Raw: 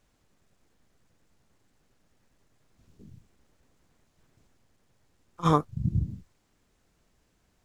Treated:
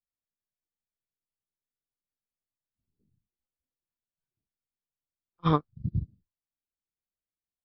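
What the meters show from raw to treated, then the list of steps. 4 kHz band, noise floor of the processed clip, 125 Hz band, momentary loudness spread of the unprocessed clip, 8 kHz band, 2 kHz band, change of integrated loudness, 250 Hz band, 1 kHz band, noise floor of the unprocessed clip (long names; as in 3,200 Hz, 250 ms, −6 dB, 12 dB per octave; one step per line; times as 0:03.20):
−1.0 dB, below −85 dBFS, −2.5 dB, 12 LU, can't be measured, −1.5 dB, −2.0 dB, −1.5 dB, −3.5 dB, −71 dBFS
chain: noise reduction from a noise print of the clip's start 11 dB
dynamic equaliser 740 Hz, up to −5 dB, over −36 dBFS, Q 0.85
downsampling to 11,025 Hz
expander for the loud parts 2.5 to 1, over −38 dBFS
level +1.5 dB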